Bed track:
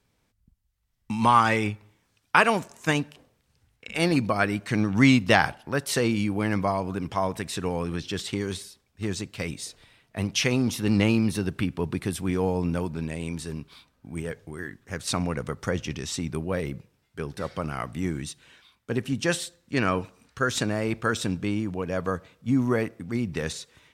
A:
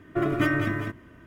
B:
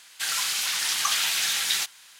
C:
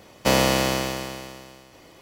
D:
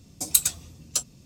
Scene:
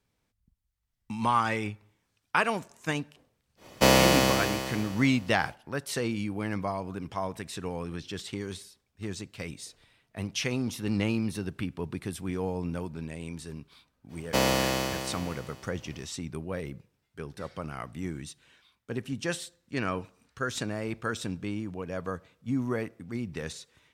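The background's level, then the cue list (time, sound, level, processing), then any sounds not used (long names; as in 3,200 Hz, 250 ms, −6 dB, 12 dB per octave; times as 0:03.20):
bed track −6.5 dB
0:03.56: mix in C −0.5 dB, fades 0.10 s
0:14.08: mix in C −5.5 dB, fades 0.05 s
not used: A, B, D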